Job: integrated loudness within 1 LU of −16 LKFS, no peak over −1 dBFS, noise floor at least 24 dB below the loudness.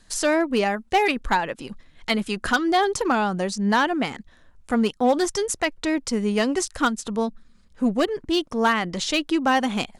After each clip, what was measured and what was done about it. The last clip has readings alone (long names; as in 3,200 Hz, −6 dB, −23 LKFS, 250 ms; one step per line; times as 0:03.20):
share of clipped samples 0.3%; peaks flattened at −12.5 dBFS; integrated loudness −23.0 LKFS; sample peak −12.5 dBFS; target loudness −16.0 LKFS
→ clipped peaks rebuilt −12.5 dBFS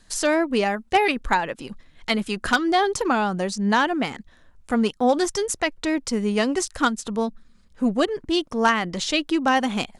share of clipped samples 0.0%; integrated loudness −23.0 LKFS; sample peak −3.5 dBFS; target loudness −16.0 LKFS
→ level +7 dB
brickwall limiter −1 dBFS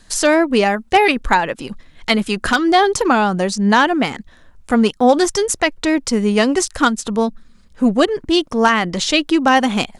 integrated loudness −16.0 LKFS; sample peak −1.0 dBFS; background noise floor −48 dBFS